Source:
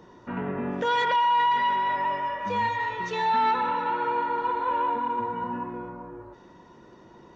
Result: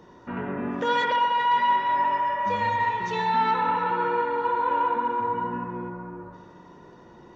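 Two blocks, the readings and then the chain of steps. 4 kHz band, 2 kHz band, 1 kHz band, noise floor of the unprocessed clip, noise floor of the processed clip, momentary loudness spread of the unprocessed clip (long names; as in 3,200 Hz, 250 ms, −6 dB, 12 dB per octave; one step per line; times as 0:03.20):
0.0 dB, +1.0 dB, +1.5 dB, −52 dBFS, −50 dBFS, 14 LU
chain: on a send: bucket-brigade delay 67 ms, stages 1,024, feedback 79%, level −7 dB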